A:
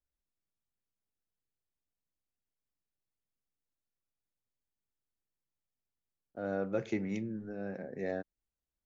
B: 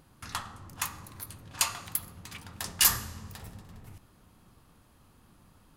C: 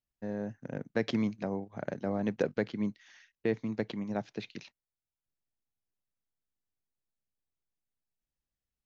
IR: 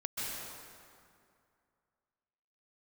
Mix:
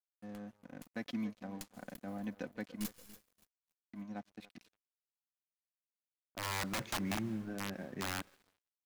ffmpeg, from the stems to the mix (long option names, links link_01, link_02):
-filter_complex "[0:a]adynamicequalizer=threshold=0.00501:dfrequency=600:dqfactor=1.7:tfrequency=600:tqfactor=1.7:attack=5:release=100:ratio=0.375:range=2:mode=cutabove:tftype=bell,aeval=exprs='(mod(31.6*val(0)+1,2)-1)/31.6':channel_layout=same,volume=2.5dB,asplit=2[link_01][link_02];[link_02]volume=-23.5dB[link_03];[1:a]aeval=exprs='0.398*(cos(1*acos(clip(val(0)/0.398,-1,1)))-cos(1*PI/2))+0.112*(cos(3*acos(clip(val(0)/0.398,-1,1)))-cos(3*PI/2))+0.0708*(cos(4*acos(clip(val(0)/0.398,-1,1)))-cos(4*PI/2))':channel_layout=same,volume=-13.5dB,asplit=3[link_04][link_05][link_06];[link_05]volume=-16dB[link_07];[link_06]volume=-20dB[link_08];[2:a]aecho=1:1:4:0.64,volume=-10dB,asplit=3[link_09][link_10][link_11];[link_09]atrim=end=2.86,asetpts=PTS-STARTPTS,afade=type=out:start_time=2.856:duration=0.004:curve=hsin[link_12];[link_10]atrim=start=2.86:end=3.93,asetpts=PTS-STARTPTS,volume=0[link_13];[link_11]atrim=start=3.93,asetpts=PTS-STARTPTS,afade=type=in:duration=0.004:curve=hsin[link_14];[link_12][link_13][link_14]concat=n=3:v=0:a=1,asplit=3[link_15][link_16][link_17];[link_16]volume=-18dB[link_18];[link_17]apad=whole_len=254147[link_19];[link_04][link_19]sidechaincompress=threshold=-40dB:ratio=8:attack=16:release=1380[link_20];[link_01][link_15]amix=inputs=2:normalize=0,equalizer=frequency=460:width_type=o:width=0.3:gain=-13.5,alimiter=level_in=3.5dB:limit=-24dB:level=0:latency=1:release=258,volume=-3.5dB,volume=0dB[link_21];[3:a]atrim=start_sample=2205[link_22];[link_03][link_07]amix=inputs=2:normalize=0[link_23];[link_23][link_22]afir=irnorm=-1:irlink=0[link_24];[link_08][link_18]amix=inputs=2:normalize=0,aecho=0:1:287|574|861|1148|1435|1722:1|0.43|0.185|0.0795|0.0342|0.0147[link_25];[link_20][link_21][link_24][link_25]amix=inputs=4:normalize=0,aeval=exprs='sgn(val(0))*max(abs(val(0))-0.00141,0)':channel_layout=same"